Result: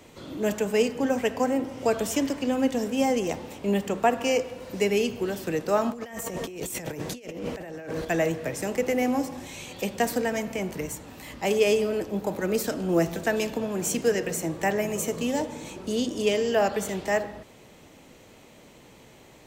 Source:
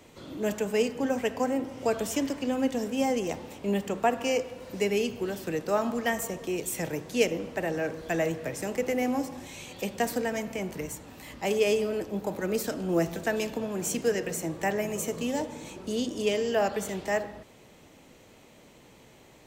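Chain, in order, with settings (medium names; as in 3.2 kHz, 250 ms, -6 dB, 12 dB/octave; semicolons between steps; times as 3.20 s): 5.90–8.05 s: compressor with a negative ratio -39 dBFS, ratio -1; trim +3 dB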